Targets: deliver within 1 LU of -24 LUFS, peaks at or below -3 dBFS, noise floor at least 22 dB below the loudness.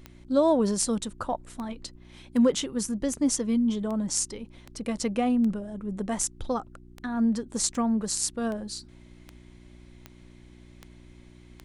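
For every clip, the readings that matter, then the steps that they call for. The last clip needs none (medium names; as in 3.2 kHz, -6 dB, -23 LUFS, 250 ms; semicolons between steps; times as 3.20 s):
clicks found 16; hum 60 Hz; highest harmonic 360 Hz; hum level -49 dBFS; loudness -27.5 LUFS; peak level -8.0 dBFS; loudness target -24.0 LUFS
-> de-click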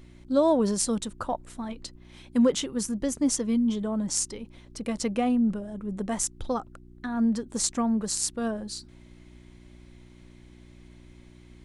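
clicks found 0; hum 60 Hz; highest harmonic 360 Hz; hum level -49 dBFS
-> de-hum 60 Hz, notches 6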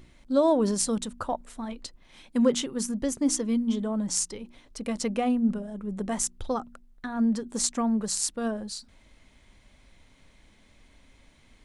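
hum not found; loudness -28.0 LUFS; peak level -8.0 dBFS; loudness target -24.0 LUFS
-> trim +4 dB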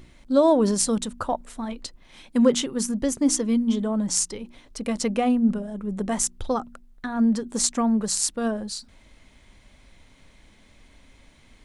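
loudness -24.0 LUFS; peak level -4.0 dBFS; noise floor -55 dBFS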